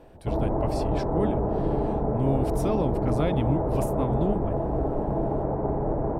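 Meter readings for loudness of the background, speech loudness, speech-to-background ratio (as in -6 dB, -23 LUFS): -27.5 LUFS, -30.5 LUFS, -3.0 dB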